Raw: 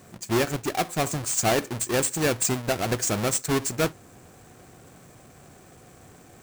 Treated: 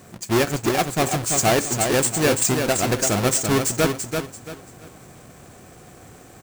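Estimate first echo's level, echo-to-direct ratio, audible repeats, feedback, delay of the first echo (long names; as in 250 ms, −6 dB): −5.5 dB, −5.0 dB, 3, 29%, 338 ms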